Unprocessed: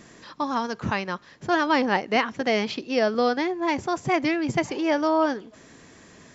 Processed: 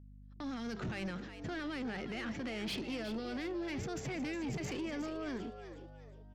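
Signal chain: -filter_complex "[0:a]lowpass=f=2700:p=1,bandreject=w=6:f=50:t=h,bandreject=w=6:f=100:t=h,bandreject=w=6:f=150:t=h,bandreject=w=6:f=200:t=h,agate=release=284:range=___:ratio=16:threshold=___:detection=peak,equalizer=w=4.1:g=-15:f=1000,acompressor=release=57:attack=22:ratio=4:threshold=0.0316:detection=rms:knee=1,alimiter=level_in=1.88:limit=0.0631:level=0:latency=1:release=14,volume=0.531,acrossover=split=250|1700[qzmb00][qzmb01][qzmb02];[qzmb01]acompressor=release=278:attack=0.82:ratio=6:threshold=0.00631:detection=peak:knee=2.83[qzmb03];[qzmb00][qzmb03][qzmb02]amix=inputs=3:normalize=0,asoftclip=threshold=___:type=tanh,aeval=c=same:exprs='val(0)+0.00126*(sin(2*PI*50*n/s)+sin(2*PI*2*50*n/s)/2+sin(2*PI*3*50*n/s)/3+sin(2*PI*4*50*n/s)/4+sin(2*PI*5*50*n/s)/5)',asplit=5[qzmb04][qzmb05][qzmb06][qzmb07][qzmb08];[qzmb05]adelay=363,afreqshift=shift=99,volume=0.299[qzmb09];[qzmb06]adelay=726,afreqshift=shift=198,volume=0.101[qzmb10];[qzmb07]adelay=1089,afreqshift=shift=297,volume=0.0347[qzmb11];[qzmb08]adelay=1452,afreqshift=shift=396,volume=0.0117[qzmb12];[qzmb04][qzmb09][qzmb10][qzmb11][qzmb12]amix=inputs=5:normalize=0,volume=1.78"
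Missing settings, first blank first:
0.00224, 0.0112, 0.01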